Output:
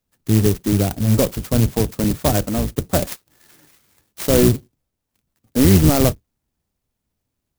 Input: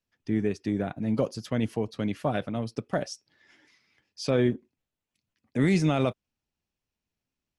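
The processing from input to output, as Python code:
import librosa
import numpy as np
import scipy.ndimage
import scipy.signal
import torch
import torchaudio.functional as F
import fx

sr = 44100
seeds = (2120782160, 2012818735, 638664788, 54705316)

y = fx.octave_divider(x, sr, octaves=1, level_db=-1.0)
y = fx.clock_jitter(y, sr, seeds[0], jitter_ms=0.13)
y = F.gain(torch.from_numpy(y), 9.0).numpy()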